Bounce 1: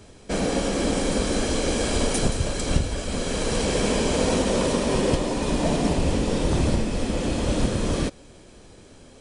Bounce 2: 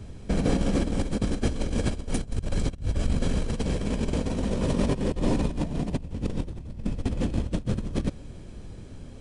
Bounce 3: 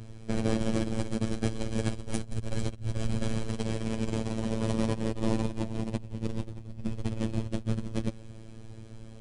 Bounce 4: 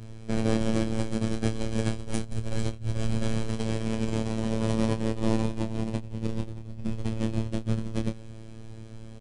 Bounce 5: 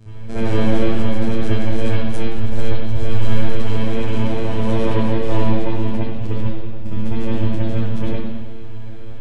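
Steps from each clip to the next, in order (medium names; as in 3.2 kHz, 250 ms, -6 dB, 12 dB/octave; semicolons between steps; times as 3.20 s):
tone controls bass +13 dB, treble -4 dB; compressor with a negative ratio -18 dBFS, ratio -0.5; trim -7.5 dB
robot voice 111 Hz; trim -1 dB
doubling 27 ms -7.5 dB
wow and flutter 31 cents; reverberation RT60 1.2 s, pre-delay 55 ms, DRR -12.5 dB; trim -3.5 dB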